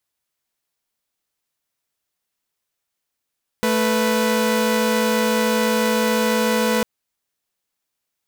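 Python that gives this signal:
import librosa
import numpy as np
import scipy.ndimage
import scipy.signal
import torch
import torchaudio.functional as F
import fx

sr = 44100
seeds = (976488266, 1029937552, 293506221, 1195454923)

y = fx.chord(sr, length_s=3.2, notes=(57, 71), wave='saw', level_db=-17.0)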